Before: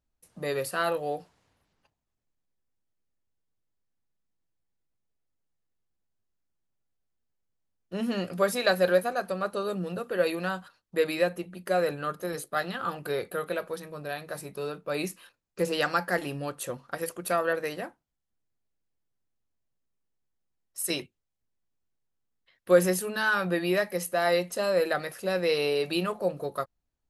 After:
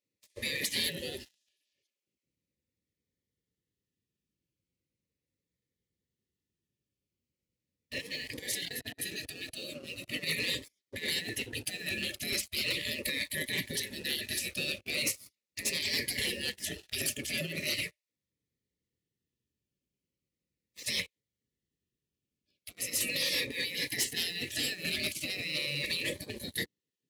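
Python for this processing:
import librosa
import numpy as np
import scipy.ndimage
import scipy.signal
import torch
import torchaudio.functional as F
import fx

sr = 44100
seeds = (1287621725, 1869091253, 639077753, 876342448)

y = fx.brickwall_bandstop(x, sr, low_hz=590.0, high_hz=1700.0)
y = fx.over_compress(y, sr, threshold_db=-34.0, ratio=-1.0)
y = fx.high_shelf(y, sr, hz=5700.0, db=-11.5)
y = fx.level_steps(y, sr, step_db=20, at=(7.98, 10.08))
y = fx.spec_gate(y, sr, threshold_db=-20, keep='weak')
y = fx.peak_eq(y, sr, hz=1000.0, db=-15.0, octaves=0.44)
y = fx.leveller(y, sr, passes=3)
y = scipy.signal.sosfilt(scipy.signal.butter(2, 60.0, 'highpass', fs=sr, output='sos'), y)
y = fx.notch_cascade(y, sr, direction='falling', hz=0.39)
y = F.gain(torch.from_numpy(y), 7.5).numpy()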